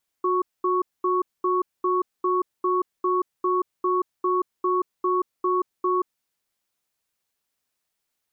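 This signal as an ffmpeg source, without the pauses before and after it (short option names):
-f lavfi -i "aevalsrc='0.0794*(sin(2*PI*364*t)+sin(2*PI*1110*t))*clip(min(mod(t,0.4),0.18-mod(t,0.4))/0.005,0,1)':d=5.82:s=44100"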